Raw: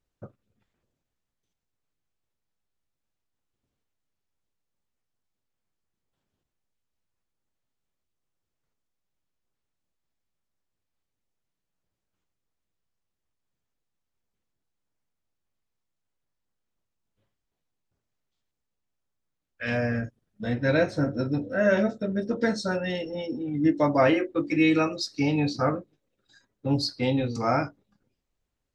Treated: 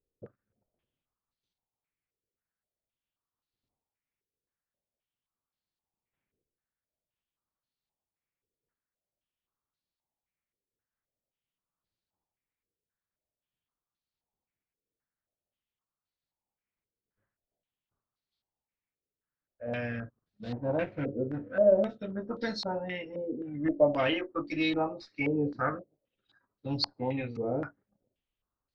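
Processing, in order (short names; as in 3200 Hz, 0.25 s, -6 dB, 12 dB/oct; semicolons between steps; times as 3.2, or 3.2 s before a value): 20.42–21.83 median filter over 25 samples; added harmonics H 6 -29 dB, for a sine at -8 dBFS; stepped low-pass 3.8 Hz 450–4300 Hz; gain -9 dB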